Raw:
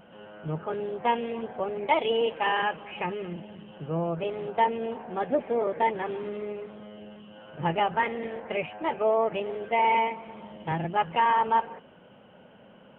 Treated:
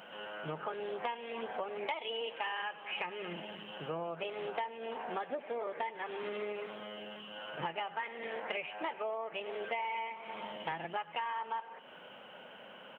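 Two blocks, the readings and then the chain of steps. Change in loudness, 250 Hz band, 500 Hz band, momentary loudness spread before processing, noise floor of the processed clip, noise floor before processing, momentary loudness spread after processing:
-11.5 dB, -14.0 dB, -11.0 dB, 18 LU, -53 dBFS, -53 dBFS, 8 LU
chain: high-pass 1.4 kHz 6 dB/octave; on a send: delay 96 ms -20.5 dB; on the sum: compression 10:1, threshold -44 dBFS, peak gain reduction 21 dB; trim +9 dB

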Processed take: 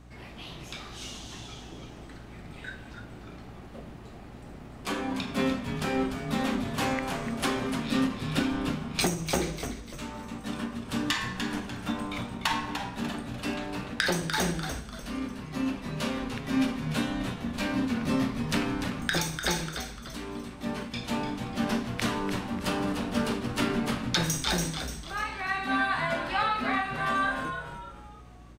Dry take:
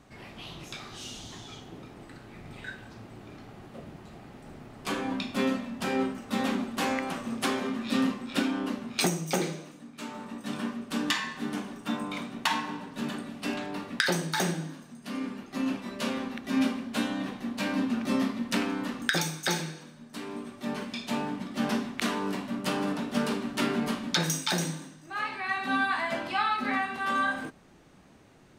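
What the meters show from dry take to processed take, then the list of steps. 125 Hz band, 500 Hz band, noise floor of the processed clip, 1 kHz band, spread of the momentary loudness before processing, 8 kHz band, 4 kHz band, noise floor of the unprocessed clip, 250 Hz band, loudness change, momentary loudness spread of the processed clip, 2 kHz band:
+4.0 dB, +0.5 dB, -45 dBFS, +0.5 dB, 17 LU, +0.5 dB, +0.5 dB, -52 dBFS, 0.0 dB, +0.5 dB, 17 LU, +0.5 dB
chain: hum 60 Hz, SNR 19 dB; frequency-shifting echo 296 ms, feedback 39%, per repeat -110 Hz, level -8 dB; endings held to a fixed fall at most 130 dB/s

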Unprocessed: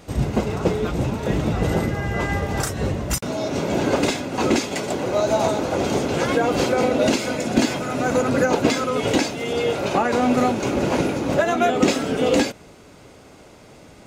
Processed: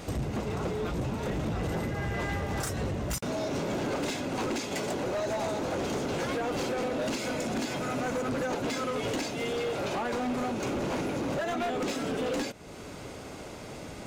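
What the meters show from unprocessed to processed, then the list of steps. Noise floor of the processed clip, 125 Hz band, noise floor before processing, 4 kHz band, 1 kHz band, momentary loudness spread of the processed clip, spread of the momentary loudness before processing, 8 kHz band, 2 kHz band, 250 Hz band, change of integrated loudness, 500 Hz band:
-43 dBFS, -9.0 dB, -46 dBFS, -9.0 dB, -10.0 dB, 3 LU, 5 LU, -9.0 dB, -9.0 dB, -10.5 dB, -10.0 dB, -10.5 dB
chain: compression 2.5:1, threshold -36 dBFS, peak gain reduction 16 dB; hard clipper -31.5 dBFS, distortion -11 dB; trim +4 dB

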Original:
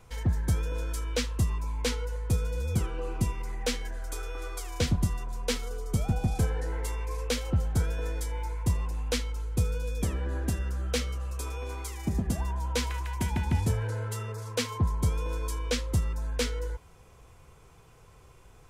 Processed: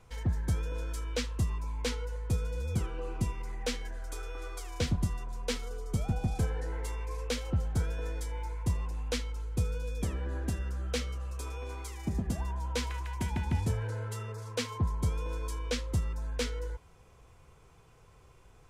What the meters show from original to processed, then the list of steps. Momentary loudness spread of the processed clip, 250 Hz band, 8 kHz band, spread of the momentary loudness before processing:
7 LU, -3.5 dB, -5.5 dB, 7 LU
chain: treble shelf 12 kHz -8.5 dB; trim -3.5 dB

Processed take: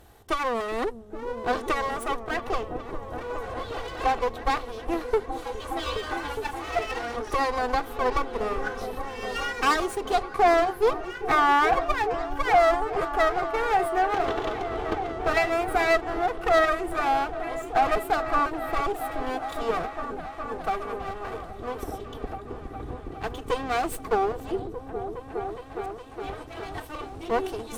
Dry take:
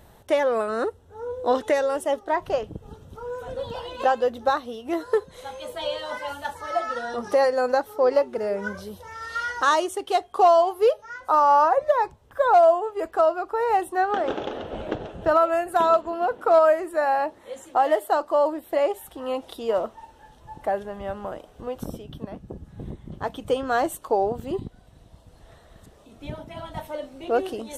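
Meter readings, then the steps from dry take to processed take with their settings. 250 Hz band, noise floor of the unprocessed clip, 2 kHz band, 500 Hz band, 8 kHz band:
-0.5 dB, -53 dBFS, +3.0 dB, -5.0 dB, no reading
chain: comb filter that takes the minimum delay 2.6 ms; valve stage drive 13 dB, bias 0.35; delay with an opening low-pass 413 ms, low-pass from 200 Hz, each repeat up 1 oct, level -3 dB; trim +1 dB

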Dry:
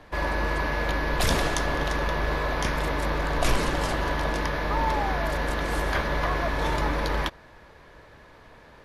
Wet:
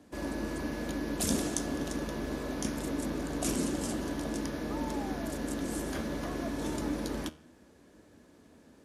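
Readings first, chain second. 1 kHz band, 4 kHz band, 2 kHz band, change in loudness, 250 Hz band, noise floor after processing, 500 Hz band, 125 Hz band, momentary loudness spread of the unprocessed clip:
-15.0 dB, -10.0 dB, -15.0 dB, -8.0 dB, +0.5 dB, -59 dBFS, -8.0 dB, -10.5 dB, 3 LU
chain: high-pass 82 Hz 12 dB/octave; flange 0.75 Hz, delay 9.4 ms, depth 3.6 ms, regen +84%; ten-band graphic EQ 125 Hz -8 dB, 250 Hz +11 dB, 500 Hz -4 dB, 1 kHz -10 dB, 2 kHz -9 dB, 4 kHz -6 dB, 8 kHz +9 dB

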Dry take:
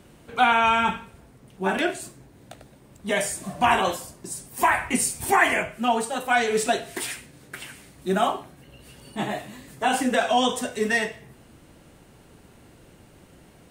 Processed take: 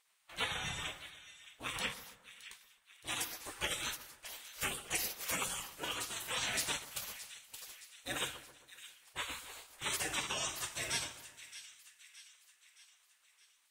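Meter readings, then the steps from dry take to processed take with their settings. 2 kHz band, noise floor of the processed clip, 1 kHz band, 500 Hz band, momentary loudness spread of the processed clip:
-15.0 dB, -71 dBFS, -23.0 dB, -23.0 dB, 18 LU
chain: dynamic bell 940 Hz, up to -5 dB, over -33 dBFS, Q 0.82; gate -44 dBFS, range -13 dB; spectral gate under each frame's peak -20 dB weak; two-band feedback delay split 1.6 kHz, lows 133 ms, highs 619 ms, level -14 dB

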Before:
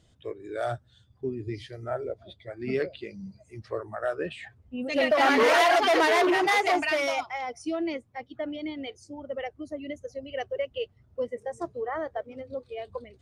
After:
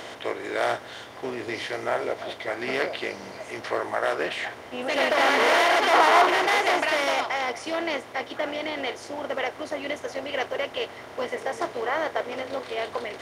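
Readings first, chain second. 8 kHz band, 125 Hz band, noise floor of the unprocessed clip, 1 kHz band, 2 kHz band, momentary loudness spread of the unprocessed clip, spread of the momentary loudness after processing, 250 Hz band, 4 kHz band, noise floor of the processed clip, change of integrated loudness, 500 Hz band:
+3.5 dB, -5.0 dB, -63 dBFS, +3.5 dB, +4.0 dB, 19 LU, 14 LU, -2.0 dB, +4.5 dB, -42 dBFS, +2.0 dB, +1.5 dB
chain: spectral levelling over time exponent 0.4; bass shelf 300 Hz -11.5 dB; time-frequency box 5.91–6.26 s, 670–1500 Hz +7 dB; trim -3 dB

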